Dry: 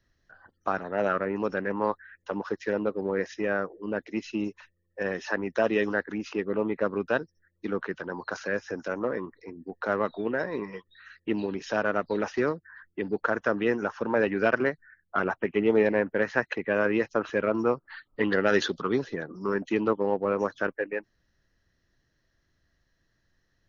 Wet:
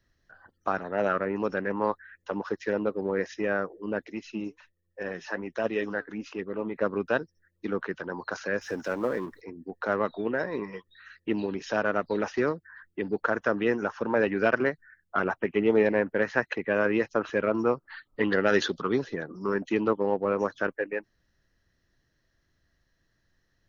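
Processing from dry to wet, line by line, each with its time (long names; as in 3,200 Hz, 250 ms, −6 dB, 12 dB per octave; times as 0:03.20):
0:04.12–0:06.75: flanger 1.3 Hz, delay 0 ms, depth 7.3 ms, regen +71%
0:08.61–0:09.41: mu-law and A-law mismatch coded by mu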